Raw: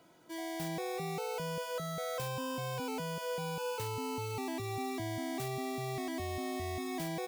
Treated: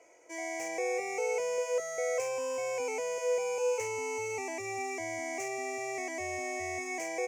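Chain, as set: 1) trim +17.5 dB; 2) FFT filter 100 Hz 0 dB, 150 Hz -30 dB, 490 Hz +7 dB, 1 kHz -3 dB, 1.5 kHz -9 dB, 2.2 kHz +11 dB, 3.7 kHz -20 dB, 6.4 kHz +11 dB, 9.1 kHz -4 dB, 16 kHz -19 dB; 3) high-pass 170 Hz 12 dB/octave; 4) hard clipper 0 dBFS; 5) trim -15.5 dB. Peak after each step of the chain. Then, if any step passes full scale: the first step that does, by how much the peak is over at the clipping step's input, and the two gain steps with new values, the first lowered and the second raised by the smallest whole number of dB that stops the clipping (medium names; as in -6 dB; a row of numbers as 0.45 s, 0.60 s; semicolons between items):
-10.5 dBFS, -6.0 dBFS, -5.5 dBFS, -5.5 dBFS, -21.0 dBFS; nothing clips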